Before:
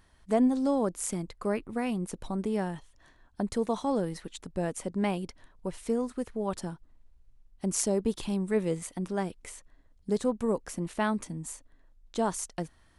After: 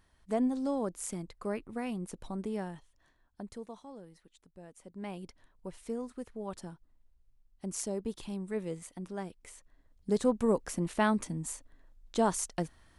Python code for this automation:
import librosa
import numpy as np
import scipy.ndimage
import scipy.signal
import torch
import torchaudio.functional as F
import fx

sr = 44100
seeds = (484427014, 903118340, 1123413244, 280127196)

y = fx.gain(x, sr, db=fx.line((2.48, -5.5), (3.52, -13.0), (3.9, -20.0), (4.71, -20.0), (5.25, -8.0), (9.4, -8.0), (10.3, 1.0)))